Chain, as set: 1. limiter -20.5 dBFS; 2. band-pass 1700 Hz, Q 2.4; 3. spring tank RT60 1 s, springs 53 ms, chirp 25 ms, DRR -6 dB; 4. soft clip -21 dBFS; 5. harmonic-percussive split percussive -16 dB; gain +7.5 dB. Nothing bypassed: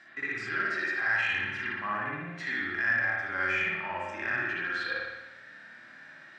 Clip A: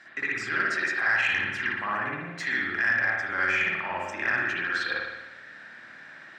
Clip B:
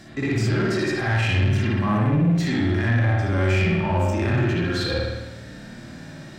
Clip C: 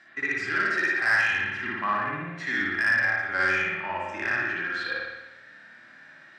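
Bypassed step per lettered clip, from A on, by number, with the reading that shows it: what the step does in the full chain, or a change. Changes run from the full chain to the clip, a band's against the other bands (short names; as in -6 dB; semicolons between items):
5, 125 Hz band -2.0 dB; 2, 125 Hz band +18.0 dB; 1, mean gain reduction 2.0 dB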